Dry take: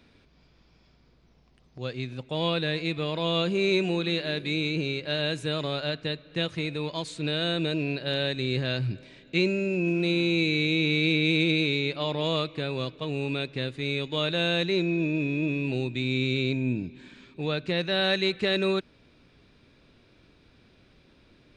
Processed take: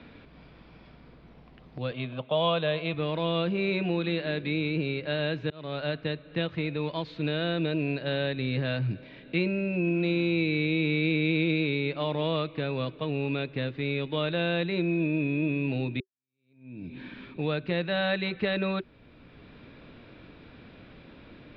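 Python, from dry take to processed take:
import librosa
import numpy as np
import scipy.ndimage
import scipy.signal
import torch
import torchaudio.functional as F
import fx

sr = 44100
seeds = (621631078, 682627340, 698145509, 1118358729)

y = fx.cabinet(x, sr, low_hz=130.0, low_slope=12, high_hz=4400.0, hz=(310.0, 630.0, 1100.0, 1900.0, 3200.0), db=(-7, 10, 9, -4, 10), at=(1.91, 2.94))
y = fx.edit(y, sr, fx.fade_in_span(start_s=5.5, length_s=0.41),
    fx.fade_in_span(start_s=16.0, length_s=0.94, curve='exp'), tone=tone)
y = scipy.signal.sosfilt(scipy.signal.bessel(8, 2500.0, 'lowpass', norm='mag', fs=sr, output='sos'), y)
y = fx.notch(y, sr, hz=380.0, q=12.0)
y = fx.band_squash(y, sr, depth_pct=40)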